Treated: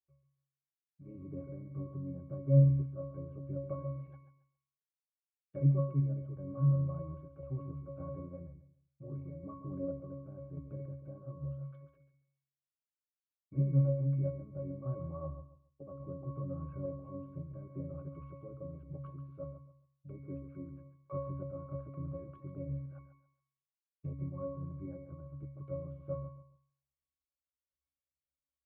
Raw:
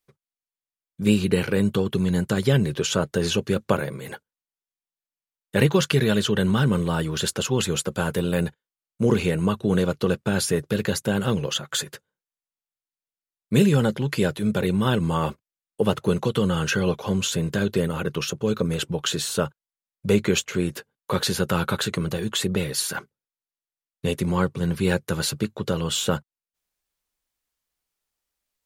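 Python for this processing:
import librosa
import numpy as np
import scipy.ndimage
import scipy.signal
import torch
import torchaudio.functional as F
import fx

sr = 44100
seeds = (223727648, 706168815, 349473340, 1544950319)

p1 = fx.env_lowpass_down(x, sr, base_hz=890.0, full_db=-21.5)
p2 = fx.peak_eq(p1, sr, hz=210.0, db=-8.0, octaves=1.1)
p3 = fx.octave_resonator(p2, sr, note='C#', decay_s=0.58)
p4 = fx.tremolo_random(p3, sr, seeds[0], hz=3.5, depth_pct=55)
p5 = fx.spacing_loss(p4, sr, db_at_10k=36)
p6 = p5 + fx.echo_feedback(p5, sr, ms=138, feedback_pct=24, wet_db=-11.0, dry=0)
y = F.gain(torch.from_numpy(p6), 7.5).numpy()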